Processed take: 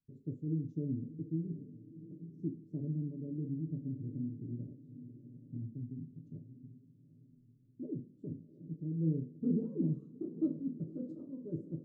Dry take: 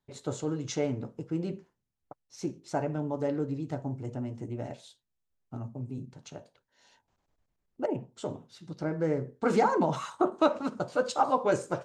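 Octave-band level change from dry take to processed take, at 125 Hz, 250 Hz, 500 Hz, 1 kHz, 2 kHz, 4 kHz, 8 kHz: -1.0 dB, -3.5 dB, -17.0 dB, under -40 dB, under -40 dB, under -35 dB, under -35 dB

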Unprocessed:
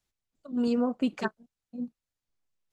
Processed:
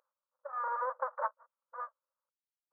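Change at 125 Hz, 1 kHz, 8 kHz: under -40 dB, +6.0 dB, n/a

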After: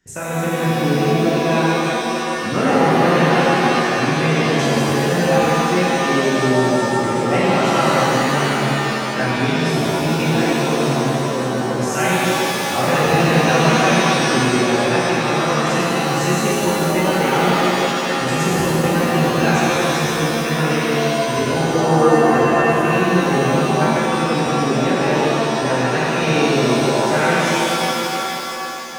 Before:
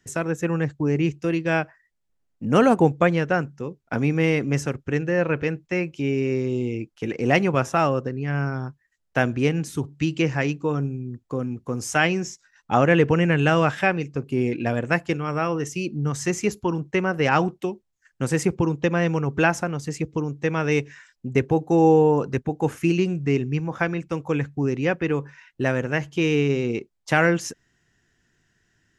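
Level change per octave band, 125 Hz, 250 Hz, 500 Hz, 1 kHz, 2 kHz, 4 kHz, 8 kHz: +4.0, +5.5, +6.0, +10.0, +7.0, +14.5, +11.5 dB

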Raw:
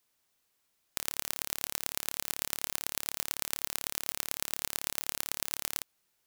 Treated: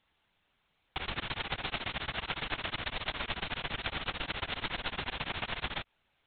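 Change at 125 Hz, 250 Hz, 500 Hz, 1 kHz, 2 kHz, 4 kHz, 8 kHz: +11.0 dB, +6.5 dB, +5.0 dB, +6.5 dB, +6.5 dB, +2.5 dB, under -40 dB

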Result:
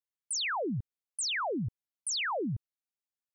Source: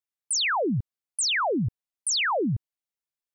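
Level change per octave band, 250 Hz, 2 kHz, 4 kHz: -7.5, -7.5, -7.5 dB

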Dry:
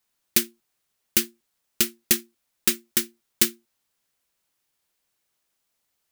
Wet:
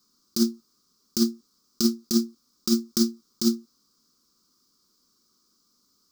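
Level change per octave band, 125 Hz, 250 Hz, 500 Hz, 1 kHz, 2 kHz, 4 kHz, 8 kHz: +3.5 dB, +10.5 dB, +4.0 dB, -4.0 dB, under -15 dB, -2.5 dB, -7.0 dB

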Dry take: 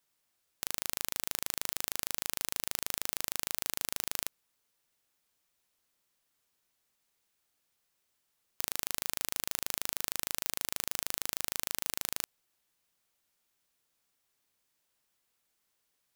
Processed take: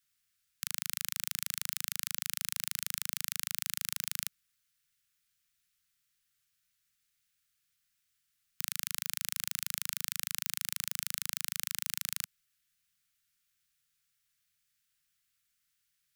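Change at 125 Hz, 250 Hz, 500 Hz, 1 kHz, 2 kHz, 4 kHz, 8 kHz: -0.5 dB, -9.5 dB, under -40 dB, -8.0 dB, 0.0 dB, 0.0 dB, 0.0 dB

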